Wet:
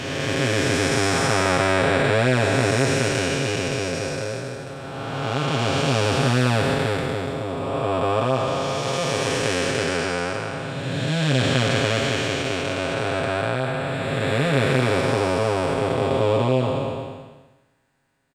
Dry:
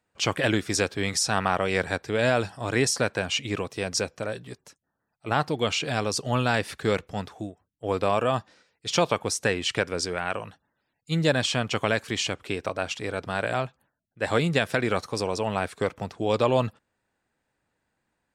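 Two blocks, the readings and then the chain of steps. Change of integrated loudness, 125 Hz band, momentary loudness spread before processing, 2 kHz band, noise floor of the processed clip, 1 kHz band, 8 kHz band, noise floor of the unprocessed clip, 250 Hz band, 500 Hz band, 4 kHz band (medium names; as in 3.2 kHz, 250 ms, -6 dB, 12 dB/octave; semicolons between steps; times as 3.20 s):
+4.5 dB, +8.0 dB, 10 LU, +5.0 dB, -52 dBFS, +4.5 dB, +1.5 dB, -80 dBFS, +5.5 dB, +5.0 dB, +3.5 dB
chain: spectral blur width 802 ms; comb 7.4 ms, depth 79%; trim +8.5 dB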